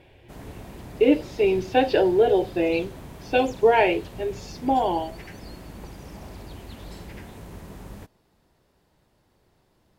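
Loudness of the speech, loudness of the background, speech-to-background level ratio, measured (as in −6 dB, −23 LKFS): −22.5 LKFS, −42.0 LKFS, 19.5 dB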